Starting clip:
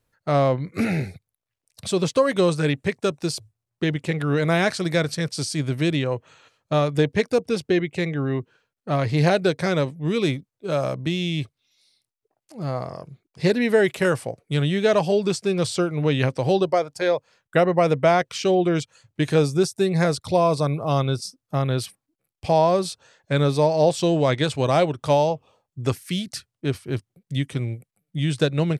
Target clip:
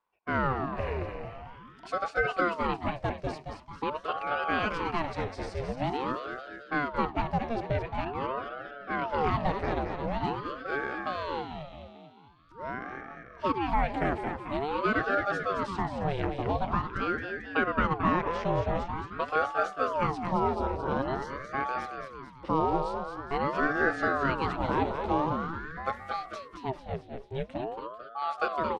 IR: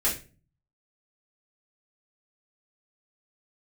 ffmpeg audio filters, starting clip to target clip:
-filter_complex "[0:a]lowpass=2000,aemphasis=mode=production:type=cd,asplit=8[link_01][link_02][link_03][link_04][link_05][link_06][link_07][link_08];[link_02]adelay=221,afreqshift=83,volume=-6.5dB[link_09];[link_03]adelay=442,afreqshift=166,volume=-12dB[link_10];[link_04]adelay=663,afreqshift=249,volume=-17.5dB[link_11];[link_05]adelay=884,afreqshift=332,volume=-23dB[link_12];[link_06]adelay=1105,afreqshift=415,volume=-28.6dB[link_13];[link_07]adelay=1326,afreqshift=498,volume=-34.1dB[link_14];[link_08]adelay=1547,afreqshift=581,volume=-39.6dB[link_15];[link_01][link_09][link_10][link_11][link_12][link_13][link_14][link_15]amix=inputs=8:normalize=0,asplit=2[link_16][link_17];[1:a]atrim=start_sample=2205[link_18];[link_17][link_18]afir=irnorm=-1:irlink=0,volume=-25.5dB[link_19];[link_16][link_19]amix=inputs=2:normalize=0,aeval=exprs='val(0)*sin(2*PI*610*n/s+610*0.65/0.46*sin(2*PI*0.46*n/s))':channel_layout=same,volume=-6.5dB"

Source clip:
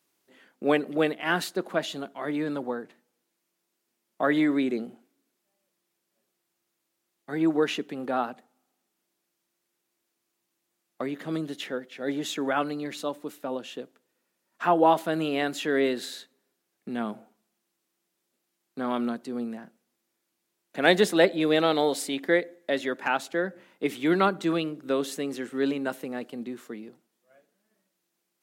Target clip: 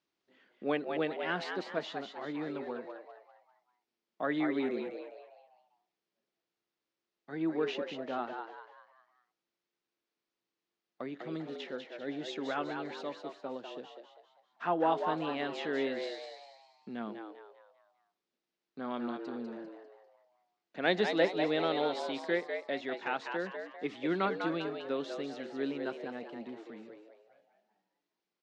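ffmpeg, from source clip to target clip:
ffmpeg -i in.wav -filter_complex "[0:a]lowpass=frequency=5300:width=0.5412,lowpass=frequency=5300:width=1.3066,asplit=6[link_01][link_02][link_03][link_04][link_05][link_06];[link_02]adelay=198,afreqshift=100,volume=-6dB[link_07];[link_03]adelay=396,afreqshift=200,volume=-14dB[link_08];[link_04]adelay=594,afreqshift=300,volume=-21.9dB[link_09];[link_05]adelay=792,afreqshift=400,volume=-29.9dB[link_10];[link_06]adelay=990,afreqshift=500,volume=-37.8dB[link_11];[link_01][link_07][link_08][link_09][link_10][link_11]amix=inputs=6:normalize=0,volume=-9dB" out.wav

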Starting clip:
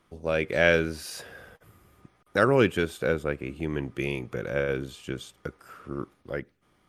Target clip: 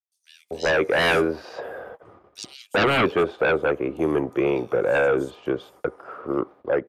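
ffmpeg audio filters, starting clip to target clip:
ffmpeg -i in.wav -filter_complex "[0:a]agate=range=-37dB:threshold=-56dB:ratio=16:detection=peak,highpass=56,acrossover=split=390|990[link_01][link_02][link_03];[link_02]aeval=exprs='0.178*sin(PI/2*6.31*val(0)/0.178)':channel_layout=same[link_04];[link_01][link_04][link_03]amix=inputs=3:normalize=0,acrossover=split=4800[link_05][link_06];[link_05]adelay=390[link_07];[link_07][link_06]amix=inputs=2:normalize=0,volume=-1.5dB" out.wav

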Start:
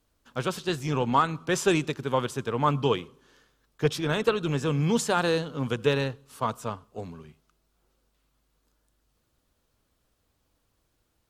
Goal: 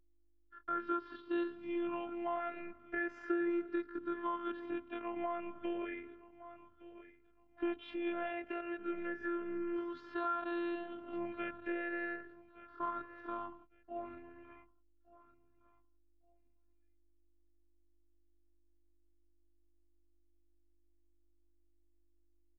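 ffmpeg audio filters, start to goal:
ffmpeg -i in.wav -filter_complex "[0:a]afftfilt=real='re*pow(10,12/40*sin(2*PI*(0.53*log(max(b,1)*sr/1024/100)/log(2)-(-0.67)*(pts-256)/sr)))':imag='im*pow(10,12/40*sin(2*PI*(0.53*log(max(b,1)*sr/1024/100)/log(2)-(-0.67)*(pts-256)/sr)))':win_size=1024:overlap=0.75,atempo=0.5,highpass=130,equalizer=frequency=130:width_type=q:width=4:gain=-9,equalizer=frequency=310:width_type=q:width=4:gain=6,equalizer=frequency=1000:width_type=q:width=4:gain=-7,equalizer=frequency=1500:width_type=q:width=4:gain=5,lowpass=frequency=2100:width=0.5412,lowpass=frequency=2100:width=1.3066,agate=range=-39dB:threshold=-50dB:ratio=16:detection=peak,equalizer=frequency=360:width=0.78:gain=-6,deesser=0.7,asplit=2[link_01][link_02];[link_02]aecho=0:1:1162|2324:0.0794|0.0214[link_03];[link_01][link_03]amix=inputs=2:normalize=0,acompressor=threshold=-31dB:ratio=4,aeval=exprs='val(0)+0.000562*(sin(2*PI*50*n/s)+sin(2*PI*2*50*n/s)/2+sin(2*PI*3*50*n/s)/3+sin(2*PI*4*50*n/s)/4+sin(2*PI*5*50*n/s)/5)':channel_layout=same,afftfilt=real='hypot(re,im)*cos(PI*b)':imag='0':win_size=512:overlap=0.75" out.wav

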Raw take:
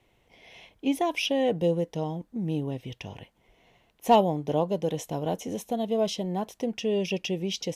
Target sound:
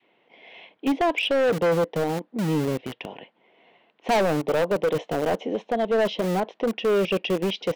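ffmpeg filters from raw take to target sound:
ffmpeg -i in.wav -filter_complex "[0:a]lowpass=frequency=3400:width=0.5412,lowpass=frequency=3400:width=1.3066,acrossover=split=190[link_01][link_02];[link_01]acrusher=bits=5:mix=0:aa=0.000001[link_03];[link_02]adynamicequalizer=threshold=0.02:dfrequency=510:dqfactor=0.84:tfrequency=510:tqfactor=0.84:attack=5:release=100:ratio=0.375:range=2.5:mode=boostabove:tftype=bell[link_04];[link_03][link_04]amix=inputs=2:normalize=0,highpass=frequency=100:poles=1,asoftclip=type=hard:threshold=-23dB,volume=5dB" out.wav

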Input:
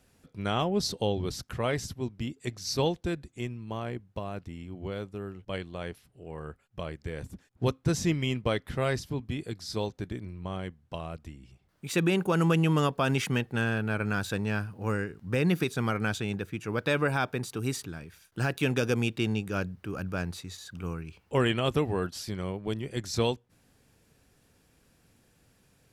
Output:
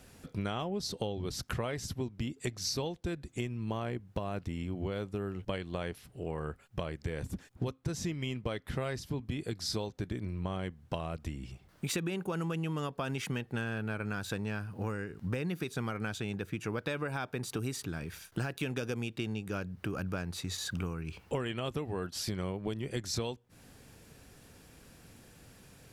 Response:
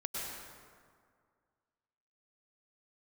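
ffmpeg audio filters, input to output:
-af "acompressor=threshold=-40dB:ratio=16,volume=8.5dB"

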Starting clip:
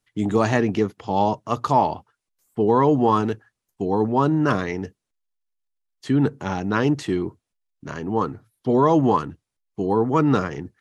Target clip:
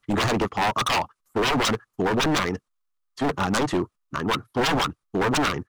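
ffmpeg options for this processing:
ffmpeg -i in.wav -af "equalizer=frequency=1200:width_type=o:width=0.44:gain=13,aeval=exprs='0.126*(abs(mod(val(0)/0.126+3,4)-2)-1)':channel_layout=same,atempo=1.9,volume=2dB" out.wav

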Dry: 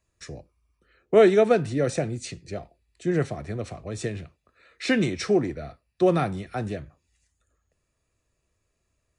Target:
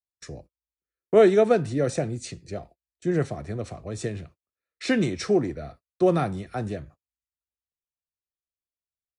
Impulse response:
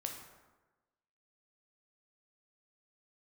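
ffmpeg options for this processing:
-af "agate=range=-33dB:threshold=-47dB:ratio=16:detection=peak,equalizer=frequency=2500:width=1.1:gain=-3.5"

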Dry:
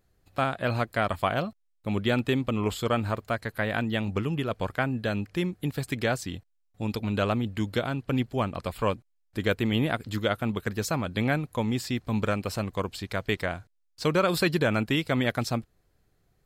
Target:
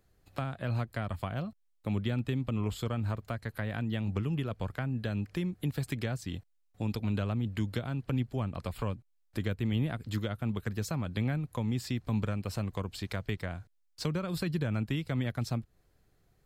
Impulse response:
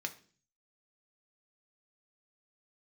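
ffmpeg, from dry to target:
-filter_complex "[0:a]acrossover=split=190[link_01][link_02];[link_02]acompressor=threshold=-36dB:ratio=6[link_03];[link_01][link_03]amix=inputs=2:normalize=0"

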